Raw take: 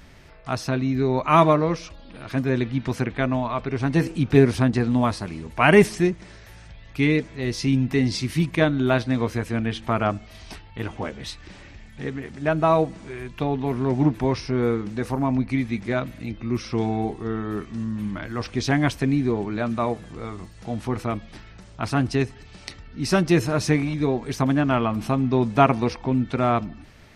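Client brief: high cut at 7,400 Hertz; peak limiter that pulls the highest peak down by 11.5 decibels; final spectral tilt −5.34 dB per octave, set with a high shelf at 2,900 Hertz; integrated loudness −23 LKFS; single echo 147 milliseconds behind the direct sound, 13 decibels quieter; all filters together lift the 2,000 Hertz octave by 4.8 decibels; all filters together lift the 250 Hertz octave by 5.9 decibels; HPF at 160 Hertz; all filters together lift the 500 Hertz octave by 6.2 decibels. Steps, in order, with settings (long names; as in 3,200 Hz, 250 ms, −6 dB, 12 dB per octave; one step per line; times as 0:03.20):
high-pass filter 160 Hz
low-pass filter 7,400 Hz
parametric band 250 Hz +6 dB
parametric band 500 Hz +6 dB
parametric band 2,000 Hz +3 dB
high-shelf EQ 2,900 Hz +7 dB
brickwall limiter −7.5 dBFS
single-tap delay 147 ms −13 dB
level −2.5 dB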